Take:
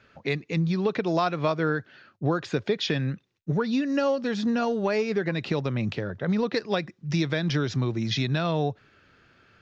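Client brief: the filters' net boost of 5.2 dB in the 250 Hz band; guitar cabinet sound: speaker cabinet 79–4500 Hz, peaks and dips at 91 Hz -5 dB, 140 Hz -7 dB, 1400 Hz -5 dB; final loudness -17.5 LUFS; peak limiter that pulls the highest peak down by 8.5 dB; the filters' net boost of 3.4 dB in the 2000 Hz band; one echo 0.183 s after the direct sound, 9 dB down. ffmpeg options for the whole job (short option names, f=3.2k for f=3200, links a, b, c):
-af "equalizer=f=250:t=o:g=7.5,equalizer=f=2k:t=o:g=6,alimiter=limit=-15.5dB:level=0:latency=1,highpass=79,equalizer=f=91:t=q:w=4:g=-5,equalizer=f=140:t=q:w=4:g=-7,equalizer=f=1.4k:t=q:w=4:g=-5,lowpass=f=4.5k:w=0.5412,lowpass=f=4.5k:w=1.3066,aecho=1:1:183:0.355,volume=8dB"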